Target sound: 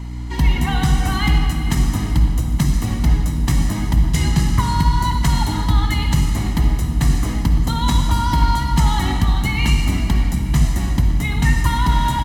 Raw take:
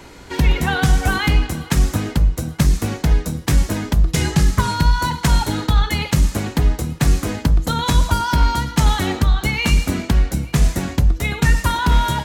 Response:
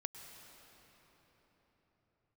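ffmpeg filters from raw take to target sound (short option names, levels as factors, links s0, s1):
-filter_complex "[0:a]aeval=exprs='val(0)+0.0501*(sin(2*PI*60*n/s)+sin(2*PI*2*60*n/s)/2+sin(2*PI*3*60*n/s)/3+sin(2*PI*4*60*n/s)/4+sin(2*PI*5*60*n/s)/5)':c=same,aecho=1:1:1:0.57[s0];[1:a]atrim=start_sample=2205,asetrate=88200,aresample=44100[s1];[s0][s1]afir=irnorm=-1:irlink=0,volume=1.88"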